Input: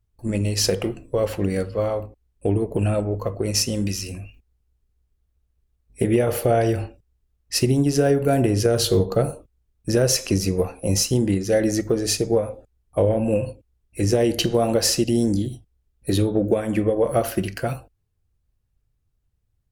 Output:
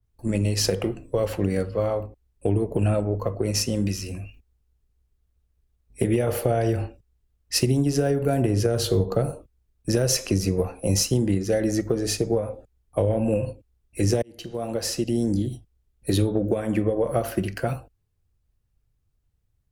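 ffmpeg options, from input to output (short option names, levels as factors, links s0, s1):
-filter_complex "[0:a]asplit=2[s0][s1];[s0]atrim=end=14.22,asetpts=PTS-STARTPTS,afade=t=out:st=14.216:d=0.004:c=hsin[s2];[s1]atrim=start=14.22,asetpts=PTS-STARTPTS,afade=t=in:d=1.29[s3];[s2][s3]concat=n=2:v=0:a=1,acrossover=split=130|3000[s4][s5][s6];[s5]acompressor=threshold=0.112:ratio=6[s7];[s4][s7][s6]amix=inputs=3:normalize=0,adynamicequalizer=threshold=0.00891:dfrequency=2200:dqfactor=0.7:tfrequency=2200:tqfactor=0.7:attack=5:release=100:ratio=0.375:range=3:mode=cutabove:tftype=highshelf"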